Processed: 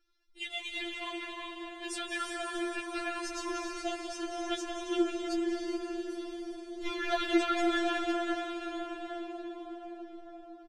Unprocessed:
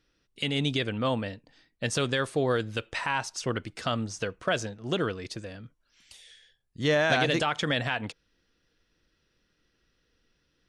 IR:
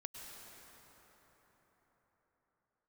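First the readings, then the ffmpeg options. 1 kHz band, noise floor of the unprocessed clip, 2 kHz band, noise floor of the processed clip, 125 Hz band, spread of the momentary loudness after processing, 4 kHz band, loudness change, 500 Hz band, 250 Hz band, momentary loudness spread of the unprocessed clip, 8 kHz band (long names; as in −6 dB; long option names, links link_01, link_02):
−3.0 dB, −74 dBFS, −6.0 dB, −51 dBFS, below −35 dB, 13 LU, −6.0 dB, −6.0 dB, −5.5 dB, 0.0 dB, 13 LU, −4.0 dB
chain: -filter_complex "[0:a]bandreject=frequency=50:width_type=h:width=6,bandreject=frequency=100:width_type=h:width=6,bandreject=frequency=150:width_type=h:width=6,bandreject=frequency=200:width_type=h:width=6,bandreject=frequency=250:width_type=h:width=6,bandreject=frequency=300:width_type=h:width=6,bandreject=frequency=350:width_type=h:width=6,acrossover=split=370|4300[link_01][link_02][link_03];[link_01]dynaudnorm=framelen=750:gausssize=7:maxgain=8.5dB[link_04];[link_04][link_02][link_03]amix=inputs=3:normalize=0,aphaser=in_gain=1:out_gain=1:delay=2.9:decay=0.52:speed=1.3:type=triangular,asoftclip=type=tanh:threshold=-13.5dB,asplit=2[link_05][link_06];[link_06]adelay=160,highpass=300,lowpass=3400,asoftclip=type=hard:threshold=-24dB,volume=-11dB[link_07];[link_05][link_07]amix=inputs=2:normalize=0[link_08];[1:a]atrim=start_sample=2205,asetrate=26019,aresample=44100[link_09];[link_08][link_09]afir=irnorm=-1:irlink=0,afftfilt=real='re*4*eq(mod(b,16),0)':imag='im*4*eq(mod(b,16),0)':win_size=2048:overlap=0.75,volume=-2dB"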